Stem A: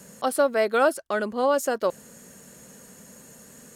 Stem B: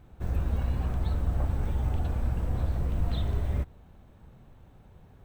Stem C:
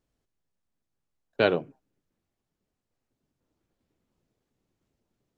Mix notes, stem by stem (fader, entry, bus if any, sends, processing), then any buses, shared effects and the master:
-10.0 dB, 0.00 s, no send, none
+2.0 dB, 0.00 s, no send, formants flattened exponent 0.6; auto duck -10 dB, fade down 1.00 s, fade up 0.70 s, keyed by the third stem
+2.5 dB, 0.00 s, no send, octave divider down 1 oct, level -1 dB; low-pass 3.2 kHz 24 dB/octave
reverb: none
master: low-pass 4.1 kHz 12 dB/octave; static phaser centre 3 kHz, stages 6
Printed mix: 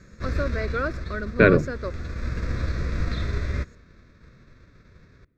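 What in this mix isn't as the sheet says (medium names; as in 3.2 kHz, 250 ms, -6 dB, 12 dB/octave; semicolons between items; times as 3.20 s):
stem A -10.0 dB -> -2.5 dB; stem C +2.5 dB -> +10.5 dB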